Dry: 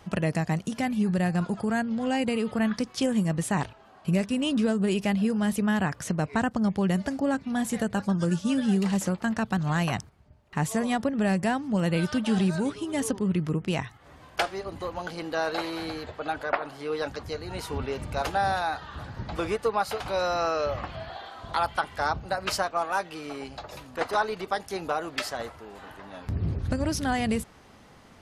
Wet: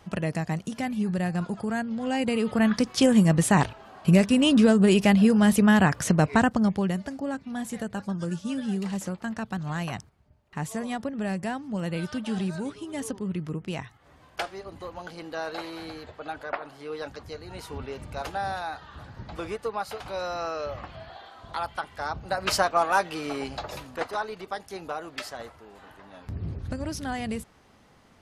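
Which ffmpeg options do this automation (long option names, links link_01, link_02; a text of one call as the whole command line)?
ffmpeg -i in.wav -af "volume=16.5dB,afade=type=in:start_time=2.02:duration=1.1:silence=0.375837,afade=type=out:start_time=6.25:duration=0.76:silence=0.266073,afade=type=in:start_time=22.09:duration=0.58:silence=0.316228,afade=type=out:start_time=23.7:duration=0.4:silence=0.316228" out.wav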